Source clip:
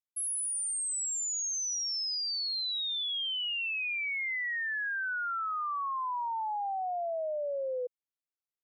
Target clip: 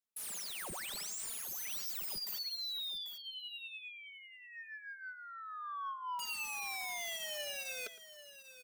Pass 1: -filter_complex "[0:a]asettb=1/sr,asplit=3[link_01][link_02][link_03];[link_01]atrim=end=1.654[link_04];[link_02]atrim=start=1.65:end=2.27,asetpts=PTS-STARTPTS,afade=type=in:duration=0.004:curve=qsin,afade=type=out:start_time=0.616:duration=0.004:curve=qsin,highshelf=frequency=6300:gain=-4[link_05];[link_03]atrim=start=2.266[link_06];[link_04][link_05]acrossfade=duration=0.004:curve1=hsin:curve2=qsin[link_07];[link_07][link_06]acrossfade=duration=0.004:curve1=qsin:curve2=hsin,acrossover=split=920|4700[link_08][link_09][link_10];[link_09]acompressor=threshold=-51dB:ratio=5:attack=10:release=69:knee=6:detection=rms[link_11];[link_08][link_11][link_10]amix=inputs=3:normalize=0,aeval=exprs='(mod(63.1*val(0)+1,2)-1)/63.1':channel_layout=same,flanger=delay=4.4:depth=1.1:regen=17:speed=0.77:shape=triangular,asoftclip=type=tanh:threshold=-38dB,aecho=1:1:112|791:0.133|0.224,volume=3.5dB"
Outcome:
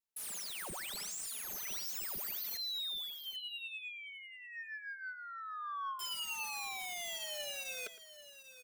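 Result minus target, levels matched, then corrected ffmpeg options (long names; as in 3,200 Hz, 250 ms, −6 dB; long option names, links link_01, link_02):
downward compressor: peak gain reduction −6 dB
-filter_complex "[0:a]asettb=1/sr,asplit=3[link_01][link_02][link_03];[link_01]atrim=end=1.654[link_04];[link_02]atrim=start=1.65:end=2.27,asetpts=PTS-STARTPTS,afade=type=in:duration=0.004:curve=qsin,afade=type=out:start_time=0.616:duration=0.004:curve=qsin,highshelf=frequency=6300:gain=-4[link_05];[link_03]atrim=start=2.266[link_06];[link_04][link_05]acrossfade=duration=0.004:curve1=hsin:curve2=qsin[link_07];[link_07][link_06]acrossfade=duration=0.004:curve1=qsin:curve2=hsin,acrossover=split=920|4700[link_08][link_09][link_10];[link_09]acompressor=threshold=-58.5dB:ratio=5:attack=10:release=69:knee=6:detection=rms[link_11];[link_08][link_11][link_10]amix=inputs=3:normalize=0,aeval=exprs='(mod(63.1*val(0)+1,2)-1)/63.1':channel_layout=same,flanger=delay=4.4:depth=1.1:regen=17:speed=0.77:shape=triangular,asoftclip=type=tanh:threshold=-38dB,aecho=1:1:112|791:0.133|0.224,volume=3.5dB"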